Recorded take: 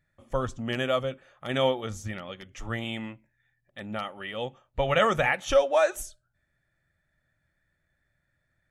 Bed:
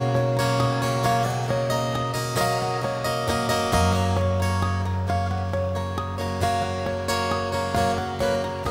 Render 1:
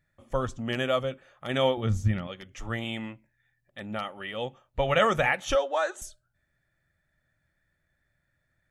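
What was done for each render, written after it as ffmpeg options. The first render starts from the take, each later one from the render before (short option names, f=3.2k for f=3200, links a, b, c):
-filter_complex "[0:a]asettb=1/sr,asplit=3[a][b][c];[a]atrim=end=1.774[d];[b]atrim=start=1.77:end=2.27,asetpts=PTS-STARTPTS,afade=t=in:d=0.004:c=qsin,afade=t=out:st=0.496:d=0.004:c=qsin,bass=f=250:g=13,treble=f=4k:g=-4[e];[c]atrim=start=2.266[f];[d][e]acrossfade=d=0.004:c1=hsin:c2=qsin[g];[g][f]acrossfade=d=0.004:c1=qsin:c2=hsin,asettb=1/sr,asplit=3[h][i][j];[h]atrim=end=5.554[k];[i]atrim=start=5.55:end=6.02,asetpts=PTS-STARTPTS,afade=t=in:d=0.004:c=qsin,afade=t=out:st=0.466:d=0.004:c=qsin,highpass=330,equalizer=f=620:t=q:w=4:g=-7,equalizer=f=2.4k:t=q:w=4:g=-9,equalizer=f=5.5k:t=q:w=4:g=-9,lowpass=f=7.6k:w=0.5412,lowpass=f=7.6k:w=1.3066[l];[j]atrim=start=6.016[m];[k][l]acrossfade=d=0.004:c1=hsin:c2=qsin[n];[n][m]acrossfade=d=0.004:c1=qsin:c2=hsin"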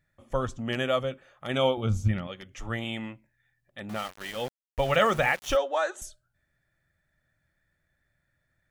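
-filter_complex "[0:a]asettb=1/sr,asplit=3[a][b][c];[a]atrim=end=1.554[d];[b]atrim=start=1.55:end=2.09,asetpts=PTS-STARTPTS,afade=t=in:d=0.004:c=qsin,afade=t=out:st=0.536:d=0.004:c=qsin,asuperstop=centerf=1800:order=8:qfactor=4.4[e];[c]atrim=start=2.086[f];[d][e]acrossfade=d=0.004:c1=hsin:c2=qsin[g];[g][f]acrossfade=d=0.004:c1=qsin:c2=hsin,asettb=1/sr,asplit=3[h][i][j];[h]atrim=end=3.894[k];[i]atrim=start=3.89:end=5.57,asetpts=PTS-STARTPTS,afade=t=in:d=0.004:c=qsin,afade=t=out:st=1.676:d=0.004:c=qsin,aeval=exprs='val(0)*gte(abs(val(0)),0.0133)':c=same[l];[j]atrim=start=5.566[m];[k][l]acrossfade=d=0.004:c1=hsin:c2=qsin[n];[n][m]acrossfade=d=0.004:c1=qsin:c2=hsin"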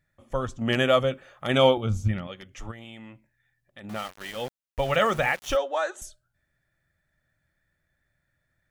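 -filter_complex "[0:a]asettb=1/sr,asplit=3[a][b][c];[a]atrim=end=0.614[d];[b]atrim=start=0.61:end=1.78,asetpts=PTS-STARTPTS,afade=t=in:d=0.004:c=qsin,afade=t=out:st=1.166:d=0.004:c=qsin,acontrast=51[e];[c]atrim=start=1.776[f];[d][e]acrossfade=d=0.004:c1=hsin:c2=qsin[g];[g][f]acrossfade=d=0.004:c1=qsin:c2=hsin,asplit=3[h][i][j];[h]afade=t=out:st=2.7:d=0.02[k];[i]acompressor=threshold=-41dB:ratio=4:attack=3.2:release=140:knee=1:detection=peak,afade=t=in:st=2.7:d=0.02,afade=t=out:st=3.83:d=0.02[l];[j]afade=t=in:st=3.83:d=0.02[m];[k][l][m]amix=inputs=3:normalize=0"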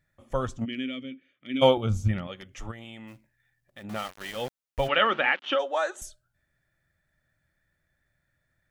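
-filter_complex "[0:a]asplit=3[a][b][c];[a]afade=t=out:st=0.64:d=0.02[d];[b]asplit=3[e][f][g];[e]bandpass=f=270:t=q:w=8,volume=0dB[h];[f]bandpass=f=2.29k:t=q:w=8,volume=-6dB[i];[g]bandpass=f=3.01k:t=q:w=8,volume=-9dB[j];[h][i][j]amix=inputs=3:normalize=0,afade=t=in:st=0.64:d=0.02,afade=t=out:st=1.61:d=0.02[k];[c]afade=t=in:st=1.61:d=0.02[l];[d][k][l]amix=inputs=3:normalize=0,asplit=3[m][n][o];[m]afade=t=out:st=3.07:d=0.02[p];[n]acrusher=bits=4:mode=log:mix=0:aa=0.000001,afade=t=in:st=3.07:d=0.02,afade=t=out:st=3.82:d=0.02[q];[o]afade=t=in:st=3.82:d=0.02[r];[p][q][r]amix=inputs=3:normalize=0,asplit=3[s][t][u];[s]afade=t=out:st=4.87:d=0.02[v];[t]highpass=f=240:w=0.5412,highpass=f=240:w=1.3066,equalizer=f=280:t=q:w=4:g=4,equalizer=f=470:t=q:w=4:g=-4,equalizer=f=680:t=q:w=4:g=-5,equalizer=f=1.5k:t=q:w=4:g=4,equalizer=f=3k:t=q:w=4:g=7,lowpass=f=3.6k:w=0.5412,lowpass=f=3.6k:w=1.3066,afade=t=in:st=4.87:d=0.02,afade=t=out:st=5.58:d=0.02[w];[u]afade=t=in:st=5.58:d=0.02[x];[v][w][x]amix=inputs=3:normalize=0"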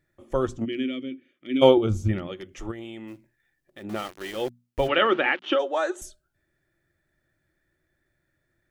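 -af "equalizer=f=350:t=o:w=0.56:g=14.5,bandreject=f=60:t=h:w=6,bandreject=f=120:t=h:w=6,bandreject=f=180:t=h:w=6,bandreject=f=240:t=h:w=6"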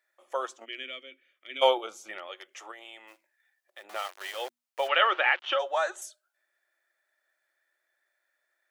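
-af "highpass=f=620:w=0.5412,highpass=f=620:w=1.3066"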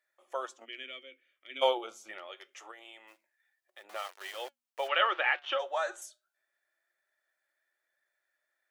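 -af "flanger=delay=1.6:depth=7.5:regen=80:speed=0.25:shape=triangular"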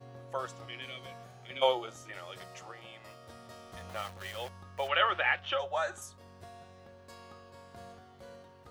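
-filter_complex "[1:a]volume=-27.5dB[a];[0:a][a]amix=inputs=2:normalize=0"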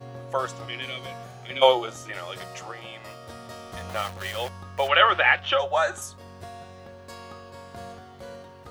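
-af "volume=9.5dB"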